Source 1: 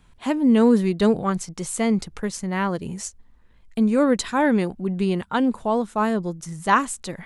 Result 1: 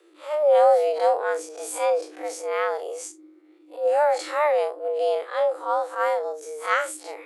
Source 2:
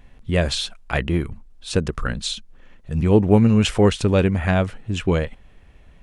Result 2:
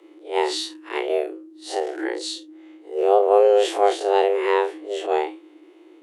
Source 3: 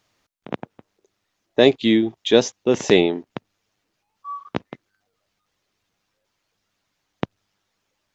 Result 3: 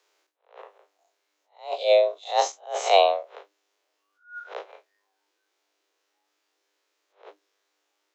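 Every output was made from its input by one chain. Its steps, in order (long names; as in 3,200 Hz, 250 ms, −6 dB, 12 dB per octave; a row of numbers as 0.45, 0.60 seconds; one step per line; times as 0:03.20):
spectrum smeared in time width 86 ms
frequency shifter +300 Hz
level that may rise only so fast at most 180 dB per second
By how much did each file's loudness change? −1.5, −1.5, −3.5 LU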